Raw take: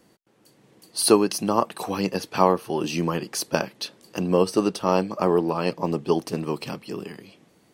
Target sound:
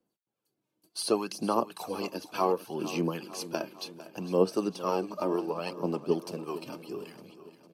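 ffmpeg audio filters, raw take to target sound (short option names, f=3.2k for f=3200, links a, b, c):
-filter_complex "[0:a]agate=range=-17dB:threshold=-49dB:ratio=16:detection=peak,bandreject=f=1.9k:w=5.4,acrossover=split=9000[a][b];[b]acompressor=threshold=-49dB:ratio=4:attack=1:release=60[c];[a][c]amix=inputs=2:normalize=0,equalizer=f=12k:w=3.4:g=8.5,acrossover=split=160[d][e];[d]acompressor=threshold=-49dB:ratio=6[f];[e]aphaser=in_gain=1:out_gain=1:delay=3.3:decay=0.5:speed=0.67:type=sinusoidal[g];[f][g]amix=inputs=2:normalize=0,acrossover=split=710[h][i];[h]aeval=exprs='val(0)*(1-0.5/2+0.5/2*cos(2*PI*3.6*n/s))':c=same[j];[i]aeval=exprs='val(0)*(1-0.5/2-0.5/2*cos(2*PI*3.6*n/s))':c=same[k];[j][k]amix=inputs=2:normalize=0,aecho=1:1:454|908|1362|1816|2270:0.178|0.0978|0.0538|0.0296|0.0163,volume=-7dB"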